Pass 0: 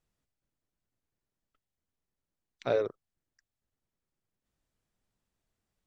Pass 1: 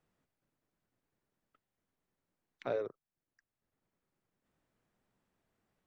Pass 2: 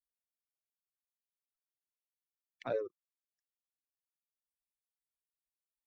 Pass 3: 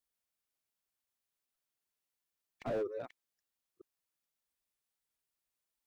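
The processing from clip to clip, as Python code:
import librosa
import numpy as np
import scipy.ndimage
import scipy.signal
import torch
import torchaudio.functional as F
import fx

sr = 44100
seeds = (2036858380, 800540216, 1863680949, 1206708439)

y1 = fx.band_squash(x, sr, depth_pct=40)
y1 = F.gain(torch.from_numpy(y1), -5.5).numpy()
y2 = fx.bin_expand(y1, sr, power=3.0)
y2 = F.gain(torch.from_numpy(y2), 3.0).numpy()
y3 = fx.reverse_delay(y2, sr, ms=477, wet_db=-13)
y3 = fx.slew_limit(y3, sr, full_power_hz=6.5)
y3 = F.gain(torch.from_numpy(y3), 5.5).numpy()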